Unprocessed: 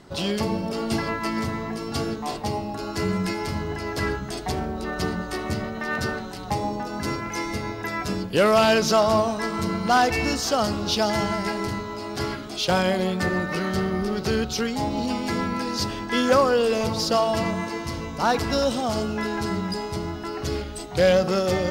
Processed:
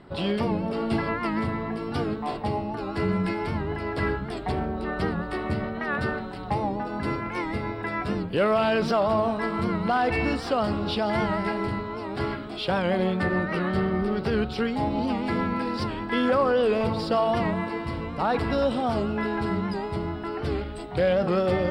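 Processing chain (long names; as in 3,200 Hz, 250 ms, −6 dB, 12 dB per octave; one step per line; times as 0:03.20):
brickwall limiter −13.5 dBFS, peak gain reduction 6.5 dB
moving average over 7 samples
wow of a warped record 78 rpm, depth 100 cents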